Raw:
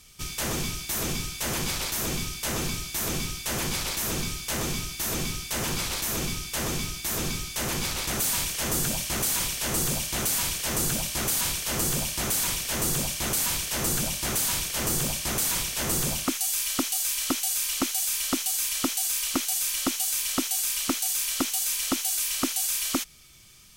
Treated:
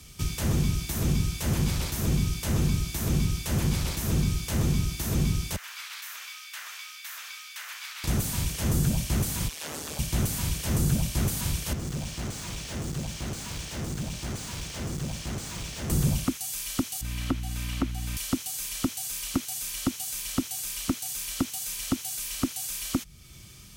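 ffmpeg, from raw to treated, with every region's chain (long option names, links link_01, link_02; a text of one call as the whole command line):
ffmpeg -i in.wav -filter_complex "[0:a]asettb=1/sr,asplit=3[link_01][link_02][link_03];[link_01]atrim=end=5.564[link_04];[link_02]atrim=start=5.56:end=8.04,asetpts=PTS-STARTPTS,afade=type=in:duration=0.004:curve=qsin,afade=type=out:start_time=2.476:duration=0.004:curve=qsin,highpass=frequency=1400:width=0.5412,highpass=frequency=1400:width=1.3066,equalizer=frequency=9400:width=0.33:gain=-13.5[link_05];[link_03]atrim=start=8.036[link_06];[link_04][link_05]acrossfade=duration=0.004:curve1=hsin:curve2=qsin[link_07];[link_07][link_06]acrossfade=duration=0.004:curve1=qsin:curve2=hsin,asettb=1/sr,asplit=3[link_08][link_09][link_10];[link_08]atrim=end=9.484[link_11];[link_09]atrim=start=9.48:end=9.99,asetpts=PTS-STARTPTS,afade=type=in:duration=0.004:curve=qsin,afade=type=out:start_time=0.506:duration=0.004:curve=qsin,acrossover=split=6900[link_12][link_13];[link_13]acompressor=threshold=-34dB:ratio=4:attack=1:release=60[link_14];[link_12][link_14]amix=inputs=2:normalize=0,highpass=490,aeval=exprs='val(0)*sin(2*PI*76*n/s)':channel_layout=same[link_15];[link_10]atrim=start=9.986[link_16];[link_11][link_15]acrossfade=duration=0.004:curve1=hsin:curve2=qsin[link_17];[link_17][link_16]acrossfade=duration=0.004:curve1=qsin:curve2=hsin,asettb=1/sr,asplit=3[link_18][link_19][link_20];[link_18]atrim=end=11.734[link_21];[link_19]atrim=start=11.73:end=15.9,asetpts=PTS-STARTPTS,afade=type=in:duration=0.004:curve=qsin,afade=type=out:start_time=4.166:duration=0.004:curve=qsin,lowpass=frequency=7900:width=0.5412,lowpass=frequency=7900:width=1.3066,aeval=exprs='(tanh(63.1*val(0)+0.7)-tanh(0.7))/63.1':channel_layout=same[link_22];[link_20]atrim=start=15.896[link_23];[link_21][link_22]acrossfade=duration=0.004:curve1=hsin:curve2=qsin[link_24];[link_24][link_23]acrossfade=duration=0.004:curve1=qsin:curve2=hsin,asettb=1/sr,asplit=3[link_25][link_26][link_27];[link_25]atrim=end=17.014[link_28];[link_26]atrim=start=17.01:end=18.17,asetpts=PTS-STARTPTS,afade=type=in:duration=0.004:curve=qsin,afade=type=out:start_time=1.156:duration=0.004:curve=qsin,aeval=exprs='val(0)+0.0112*(sin(2*PI*60*n/s)+sin(2*PI*2*60*n/s)/2+sin(2*PI*3*60*n/s)/3+sin(2*PI*4*60*n/s)/4+sin(2*PI*5*60*n/s)/5)':channel_layout=same,bass=frequency=250:gain=-3,treble=frequency=4000:gain=-14[link_29];[link_27]atrim=start=18.166[link_30];[link_28][link_29]acrossfade=duration=0.004:curve1=hsin:curve2=qsin[link_31];[link_31][link_30]acrossfade=duration=0.004:curve1=qsin:curve2=hsin,highpass=40,lowshelf=frequency=370:gain=10.5,acrossover=split=190[link_32][link_33];[link_33]acompressor=threshold=-40dB:ratio=2[link_34];[link_32][link_34]amix=inputs=2:normalize=0,volume=2dB" out.wav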